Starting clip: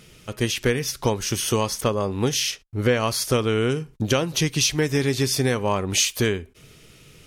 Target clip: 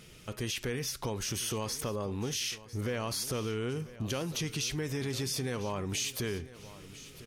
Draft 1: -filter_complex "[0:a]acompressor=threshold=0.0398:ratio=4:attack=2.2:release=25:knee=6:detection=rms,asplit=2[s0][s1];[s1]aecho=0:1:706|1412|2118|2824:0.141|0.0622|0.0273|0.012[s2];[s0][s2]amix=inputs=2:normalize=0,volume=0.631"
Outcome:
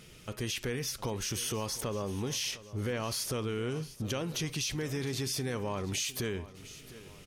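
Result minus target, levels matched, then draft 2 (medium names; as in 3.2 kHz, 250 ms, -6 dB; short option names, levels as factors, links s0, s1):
echo 295 ms early
-filter_complex "[0:a]acompressor=threshold=0.0398:ratio=4:attack=2.2:release=25:knee=6:detection=rms,asplit=2[s0][s1];[s1]aecho=0:1:1001|2002|3003|4004:0.141|0.0622|0.0273|0.012[s2];[s0][s2]amix=inputs=2:normalize=0,volume=0.631"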